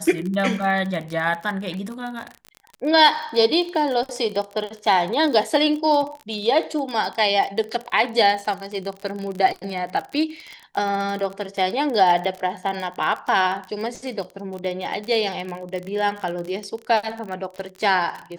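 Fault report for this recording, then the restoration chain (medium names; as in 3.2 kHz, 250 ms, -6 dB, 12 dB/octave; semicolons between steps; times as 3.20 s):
crackle 38 per s -27 dBFS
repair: de-click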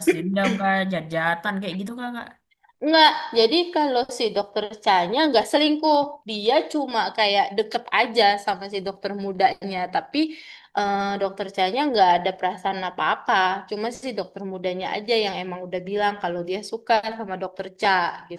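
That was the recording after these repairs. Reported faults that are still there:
nothing left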